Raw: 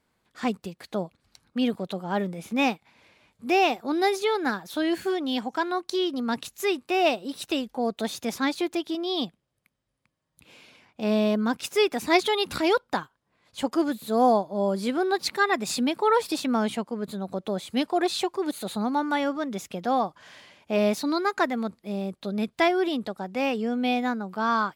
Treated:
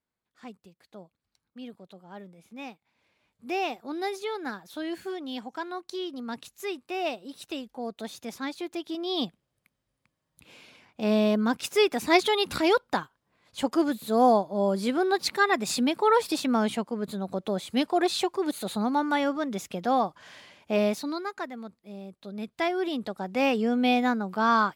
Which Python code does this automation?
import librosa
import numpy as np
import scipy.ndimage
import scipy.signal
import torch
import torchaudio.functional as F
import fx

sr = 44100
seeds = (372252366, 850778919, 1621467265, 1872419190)

y = fx.gain(x, sr, db=fx.line((2.71, -17.0), (3.49, -8.0), (8.61, -8.0), (9.25, 0.0), (20.72, 0.0), (21.42, -11.0), (22.11, -11.0), (23.43, 2.0)))